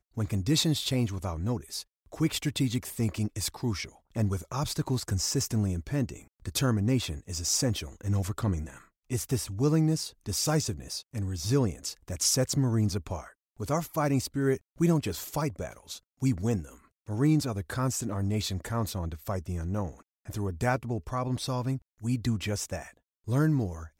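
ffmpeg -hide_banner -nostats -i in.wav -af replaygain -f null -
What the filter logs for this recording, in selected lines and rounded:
track_gain = +10.4 dB
track_peak = 0.149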